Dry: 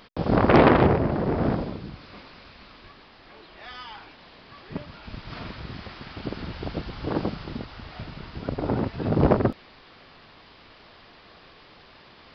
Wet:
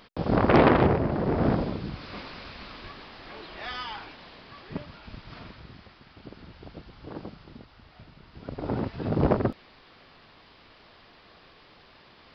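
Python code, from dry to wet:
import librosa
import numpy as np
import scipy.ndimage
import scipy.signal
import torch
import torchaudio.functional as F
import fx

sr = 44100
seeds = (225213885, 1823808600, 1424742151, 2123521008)

y = fx.gain(x, sr, db=fx.line((1.09, -2.5), (2.18, 5.5), (3.66, 5.5), (4.86, -2.0), (6.0, -12.5), (8.24, -12.5), (8.74, -3.5)))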